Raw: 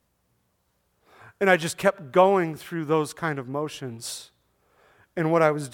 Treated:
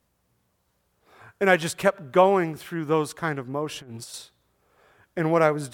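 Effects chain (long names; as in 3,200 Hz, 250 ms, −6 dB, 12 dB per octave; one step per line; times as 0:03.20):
0:03.69–0:04.14: compressor whose output falls as the input rises −38 dBFS, ratio −0.5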